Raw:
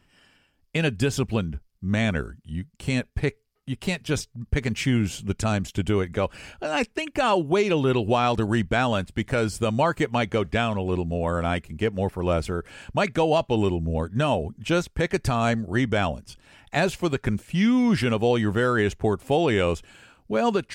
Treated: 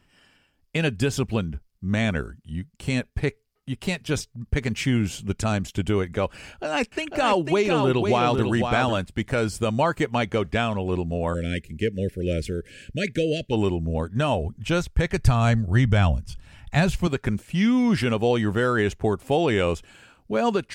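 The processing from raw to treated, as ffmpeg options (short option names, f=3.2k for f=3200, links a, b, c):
-filter_complex "[0:a]asettb=1/sr,asplit=3[a][b][c];[a]atrim=end=6.424[d];[b]atrim=start=6.42:end=8.97,asetpts=PTS-STARTPTS,afade=t=in:d=0.004:c=qsin,afade=t=out:st=2.546:d=0.004:c=qsin,aecho=1:1:497:0.531,atrim=end_sample=112455[e];[c]atrim=start=8.966[f];[d][e]acrossfade=d=0.004:c1=hsin:c2=qsin[g];[g][f]acrossfade=d=0.004:c1=qsin:c2=hsin,asplit=3[h][i][j];[h]afade=t=out:st=11.33:d=0.02[k];[i]asuperstop=centerf=960:order=8:qfactor=0.84,afade=t=in:st=11.33:d=0.02,afade=t=out:st=13.51:d=0.02[l];[j]afade=t=in:st=13.51:d=0.02[m];[k][l][m]amix=inputs=3:normalize=0,asettb=1/sr,asplit=3[n][o][p];[n]atrim=end=14.024[q];[o]atrim=start=14.02:end=17.07,asetpts=PTS-STARTPTS,afade=t=in:d=0.004:c=qsin,afade=t=out:st=3.046:d=0.004:c=qsin,asubboost=boost=10:cutoff=130[r];[p]atrim=start=17.066[s];[q][r]acrossfade=d=0.004:c1=hsin:c2=qsin[t];[t][s]acrossfade=d=0.004:c1=qsin:c2=hsin"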